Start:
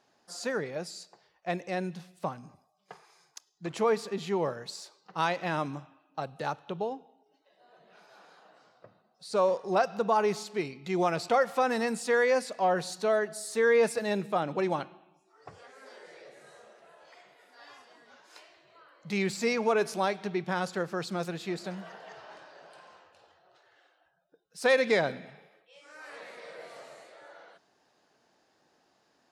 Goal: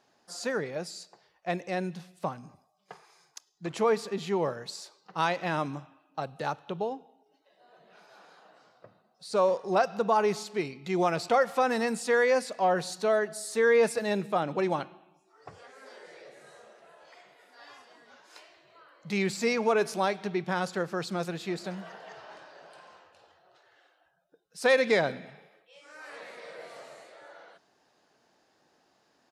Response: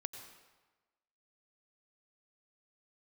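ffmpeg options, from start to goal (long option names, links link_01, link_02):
-af "aresample=32000,aresample=44100,volume=1dB"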